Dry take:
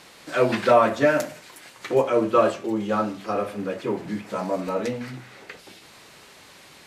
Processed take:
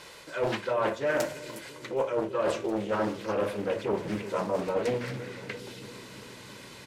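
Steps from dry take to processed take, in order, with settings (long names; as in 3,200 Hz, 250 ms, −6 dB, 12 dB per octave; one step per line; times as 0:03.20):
comb filter 2 ms, depth 51%
reversed playback
downward compressor 20 to 1, threshold −24 dBFS, peak gain reduction 14.5 dB
reversed playback
bucket-brigade delay 341 ms, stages 1,024, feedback 79%, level −12 dB
highs frequency-modulated by the lows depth 0.53 ms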